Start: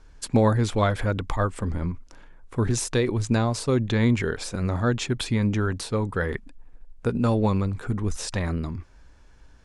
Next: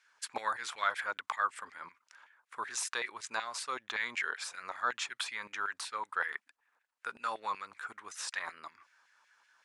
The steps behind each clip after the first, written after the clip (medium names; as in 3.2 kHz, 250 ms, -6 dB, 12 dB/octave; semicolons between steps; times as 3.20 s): LFO high-pass saw down 5.3 Hz 930–2100 Hz; trim -7 dB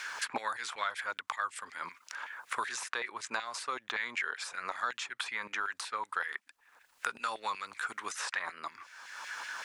three bands compressed up and down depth 100%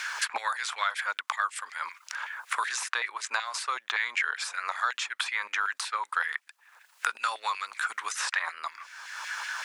high-pass 830 Hz 12 dB/octave; trim +6.5 dB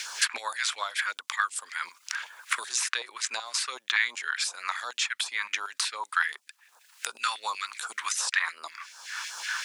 phase shifter stages 2, 2.7 Hz, lowest notch 440–2000 Hz; trim +5 dB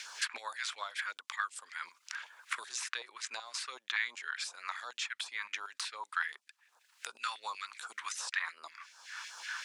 treble shelf 9.2 kHz -9.5 dB; trim -8 dB